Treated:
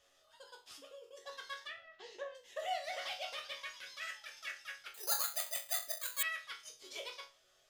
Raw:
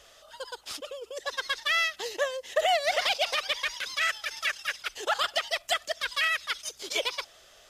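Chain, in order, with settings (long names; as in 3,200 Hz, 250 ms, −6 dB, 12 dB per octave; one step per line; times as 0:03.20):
0:01.59–0:02.35: treble cut that deepens with the level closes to 780 Hz, closed at −21.5 dBFS
resonators tuned to a chord F#2 sus4, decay 0.32 s
0:04.94–0:06.23: bad sample-rate conversion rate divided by 8×, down filtered, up zero stuff
level −2.5 dB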